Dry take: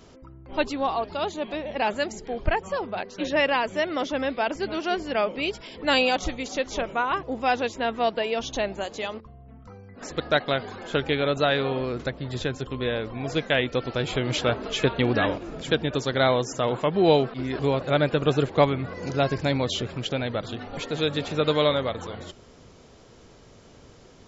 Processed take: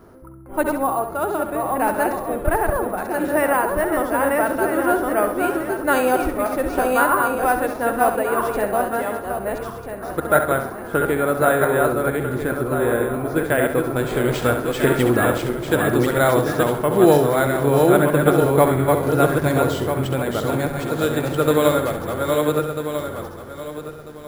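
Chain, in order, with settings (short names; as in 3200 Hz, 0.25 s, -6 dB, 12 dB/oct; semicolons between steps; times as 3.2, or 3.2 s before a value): regenerating reverse delay 0.647 s, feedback 48%, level -2.5 dB; resonant high shelf 2100 Hz -12 dB, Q 1.5, from 13.96 s -6 dB; flutter echo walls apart 11.5 m, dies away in 0.46 s; careless resampling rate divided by 4×, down none, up hold; small resonant body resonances 350/1400 Hz, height 6 dB; gain +2.5 dB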